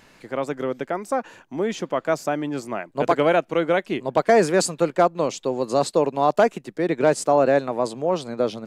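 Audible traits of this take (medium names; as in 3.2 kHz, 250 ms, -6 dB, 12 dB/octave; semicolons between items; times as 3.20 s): noise floor -54 dBFS; spectral tilt -5.0 dB/octave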